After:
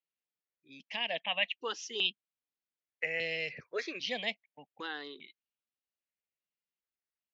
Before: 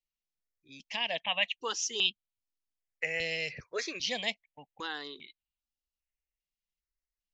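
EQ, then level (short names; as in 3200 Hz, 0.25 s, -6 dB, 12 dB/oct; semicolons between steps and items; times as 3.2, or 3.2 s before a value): BPF 170–3300 Hz; bell 1000 Hz -4.5 dB 0.66 oct; 0.0 dB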